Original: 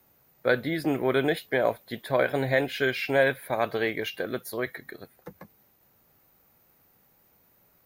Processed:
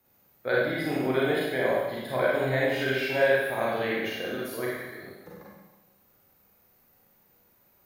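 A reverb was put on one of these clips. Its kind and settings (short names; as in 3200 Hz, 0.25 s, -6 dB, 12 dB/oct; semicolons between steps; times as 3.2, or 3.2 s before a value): Schroeder reverb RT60 1.1 s, combs from 31 ms, DRR -6 dB; gain -7 dB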